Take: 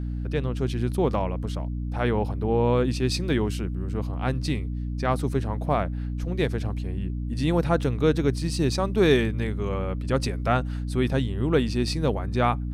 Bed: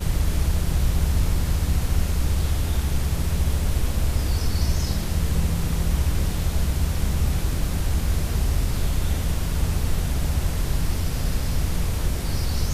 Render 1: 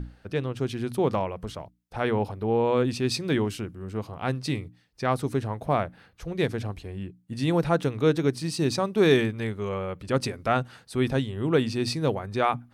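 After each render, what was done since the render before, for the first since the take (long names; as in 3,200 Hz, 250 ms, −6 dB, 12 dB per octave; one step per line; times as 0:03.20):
mains-hum notches 60/120/180/240/300 Hz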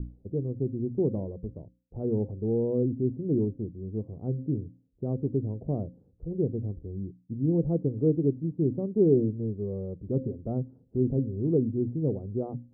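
inverse Chebyshev low-pass filter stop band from 2,600 Hz, stop band 80 dB
hum removal 262.4 Hz, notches 2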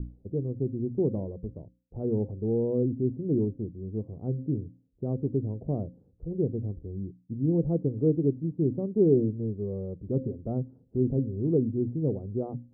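no processing that can be heard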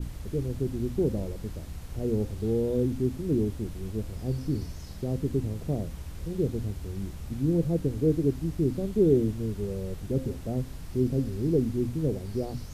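mix in bed −17.5 dB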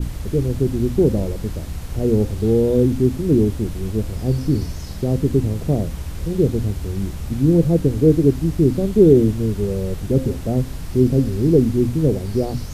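level +10.5 dB
brickwall limiter −1 dBFS, peak gain reduction 1.5 dB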